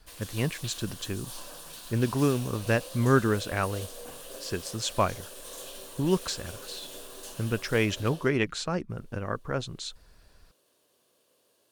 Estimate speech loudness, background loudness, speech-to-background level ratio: −29.5 LKFS, −42.0 LKFS, 12.5 dB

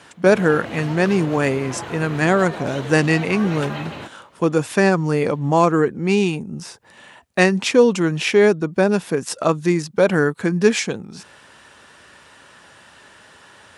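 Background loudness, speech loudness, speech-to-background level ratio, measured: −32.0 LKFS, −18.5 LKFS, 13.5 dB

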